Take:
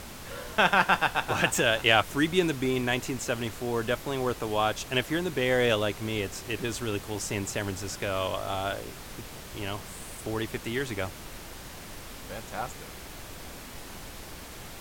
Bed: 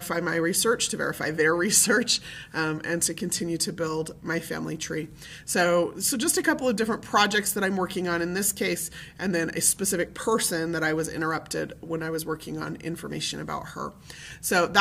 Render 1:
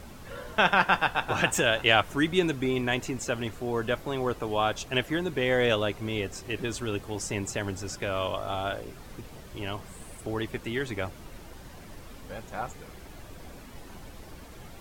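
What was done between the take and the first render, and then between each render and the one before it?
denoiser 9 dB, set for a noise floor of -43 dBFS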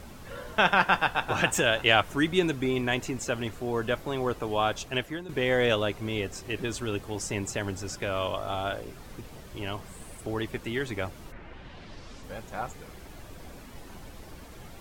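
4.64–5.29 fade out equal-power, to -13.5 dB; 11.31–12.22 synth low-pass 1800 Hz -> 6800 Hz, resonance Q 1.7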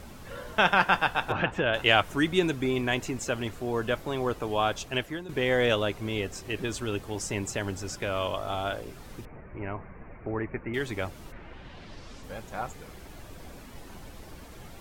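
1.32–1.74 air absorption 350 m; 9.25–10.74 steep low-pass 2400 Hz 72 dB/oct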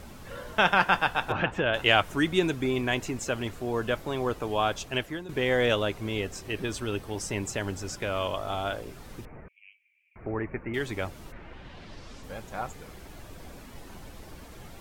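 6.47–7.4 notch 7000 Hz; 9.48–10.16 rippled Chebyshev high-pass 2300 Hz, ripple 3 dB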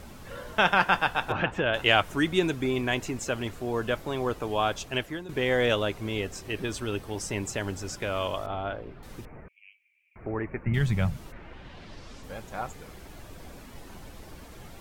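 8.46–9.03 air absorption 390 m; 10.66–11.17 resonant low shelf 230 Hz +10.5 dB, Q 3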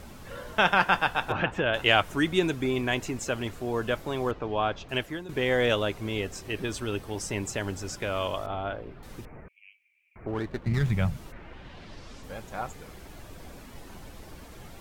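4.31–4.89 air absorption 210 m; 10.27–10.9 running maximum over 9 samples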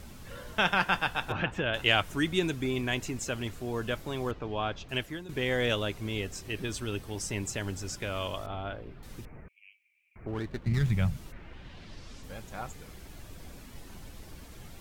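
bell 730 Hz -6 dB 2.9 oct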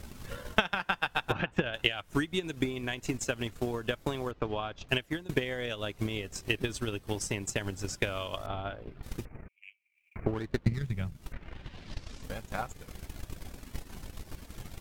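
compressor 10:1, threshold -32 dBFS, peak gain reduction 13.5 dB; transient shaper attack +12 dB, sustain -9 dB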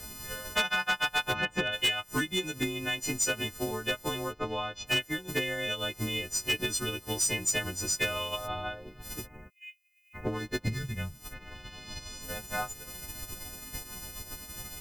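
frequency quantiser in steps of 3 st; overloaded stage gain 21.5 dB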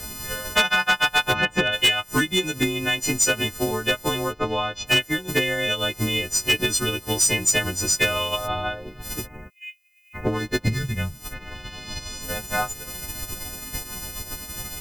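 gain +8.5 dB

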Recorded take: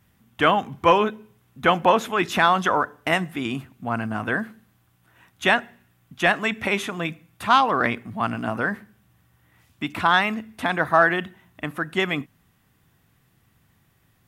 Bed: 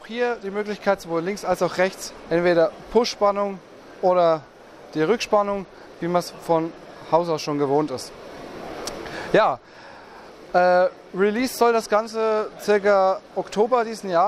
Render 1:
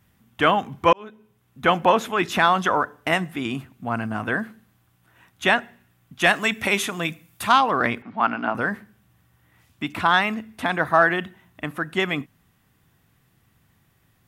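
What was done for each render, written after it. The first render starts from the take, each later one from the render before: 0.93–1.71 fade in; 6.21–7.52 high shelf 4000 Hz +10.5 dB; 8.02–8.55 speaker cabinet 260–4600 Hz, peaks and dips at 260 Hz +5 dB, 870 Hz +7 dB, 1400 Hz +7 dB, 2300 Hz +4 dB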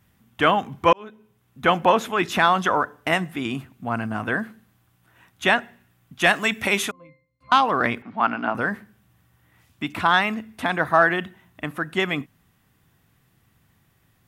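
6.91–7.52 octave resonator C, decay 0.48 s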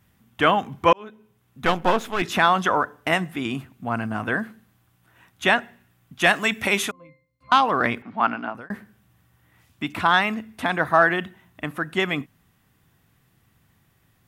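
1.65–2.22 half-wave gain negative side -12 dB; 8.27–8.7 fade out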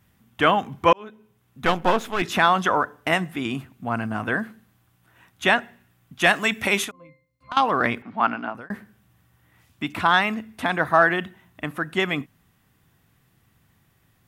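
6.84–7.57 compressor, threshold -30 dBFS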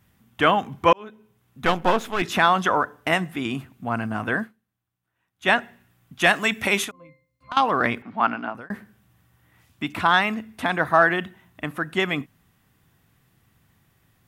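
4.43–5.49 dip -20.5 dB, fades 0.45 s exponential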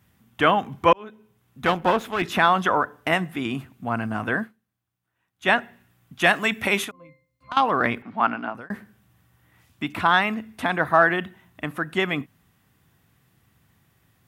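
HPF 41 Hz; dynamic EQ 6500 Hz, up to -5 dB, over -42 dBFS, Q 0.94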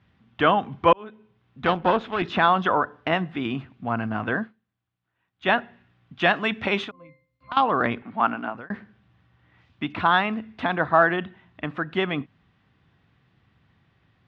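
LPF 4100 Hz 24 dB/oct; dynamic EQ 2100 Hz, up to -5 dB, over -36 dBFS, Q 2.2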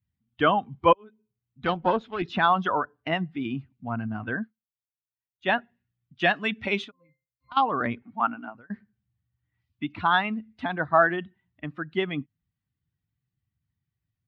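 per-bin expansion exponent 1.5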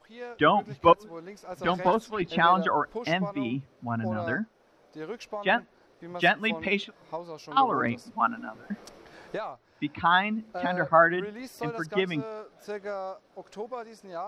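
add bed -17.5 dB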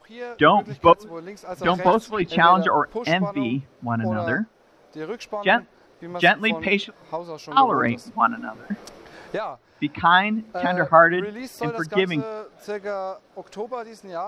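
gain +6 dB; limiter -2 dBFS, peak gain reduction 2 dB

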